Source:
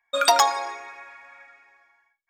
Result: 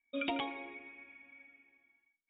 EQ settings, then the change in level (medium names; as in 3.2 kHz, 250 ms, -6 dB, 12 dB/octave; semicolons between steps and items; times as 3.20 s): cascade formant filter i; distance through air 70 m; +8.0 dB